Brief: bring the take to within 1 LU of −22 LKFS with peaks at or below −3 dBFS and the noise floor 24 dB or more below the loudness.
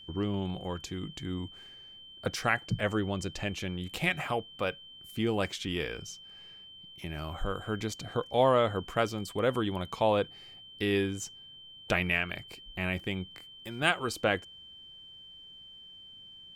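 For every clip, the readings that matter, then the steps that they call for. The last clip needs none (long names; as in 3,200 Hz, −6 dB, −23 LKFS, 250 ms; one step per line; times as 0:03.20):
interfering tone 3,100 Hz; level of the tone −48 dBFS; integrated loudness −32.0 LKFS; sample peak −9.0 dBFS; target loudness −22.0 LKFS
→ notch filter 3,100 Hz, Q 30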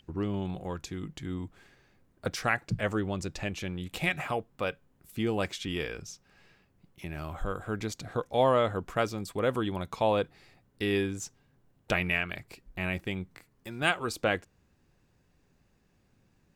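interfering tone none found; integrated loudness −32.0 LKFS; sample peak −9.5 dBFS; target loudness −22.0 LKFS
→ level +10 dB
brickwall limiter −3 dBFS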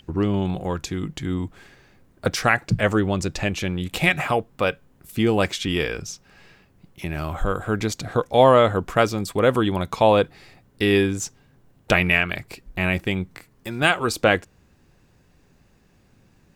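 integrated loudness −22.0 LKFS; sample peak −3.0 dBFS; background noise floor −59 dBFS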